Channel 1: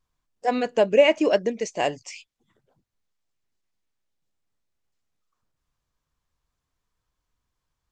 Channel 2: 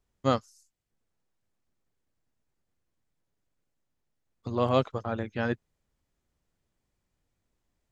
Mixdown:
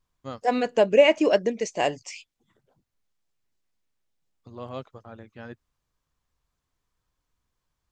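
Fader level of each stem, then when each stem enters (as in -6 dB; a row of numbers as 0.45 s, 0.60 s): 0.0 dB, -12.0 dB; 0.00 s, 0.00 s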